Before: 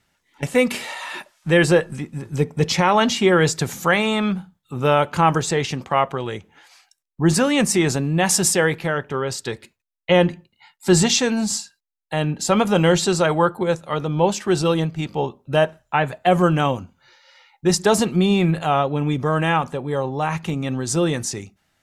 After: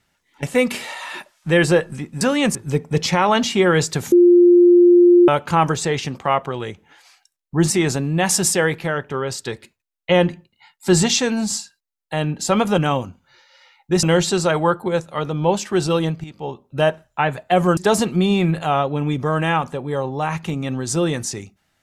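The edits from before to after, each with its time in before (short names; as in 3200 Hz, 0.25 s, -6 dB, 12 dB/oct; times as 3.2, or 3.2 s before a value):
3.78–4.94 bleep 351 Hz -7 dBFS
7.36–7.7 move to 2.21
14.99–15.56 fade in, from -13 dB
16.52–17.77 move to 12.78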